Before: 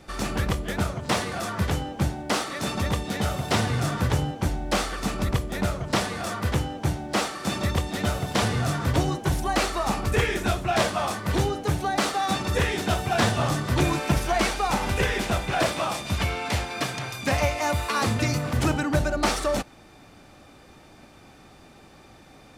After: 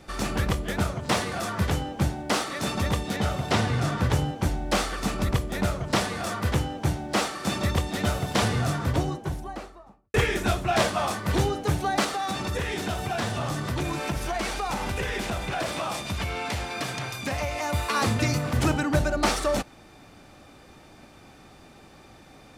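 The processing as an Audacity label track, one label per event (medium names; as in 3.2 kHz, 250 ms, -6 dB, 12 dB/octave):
3.160000	4.110000	treble shelf 8.5 kHz -9.5 dB
8.460000	10.140000	studio fade out
12.040000	17.730000	compression 3:1, threshold -26 dBFS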